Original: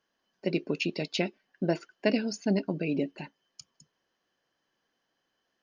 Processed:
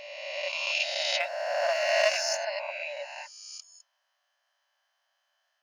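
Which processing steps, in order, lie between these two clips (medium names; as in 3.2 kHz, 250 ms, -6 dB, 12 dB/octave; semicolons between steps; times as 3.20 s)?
reverse spectral sustain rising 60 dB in 1.92 s; 1.20–2.37 s: waveshaping leveller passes 1; brick-wall FIR high-pass 550 Hz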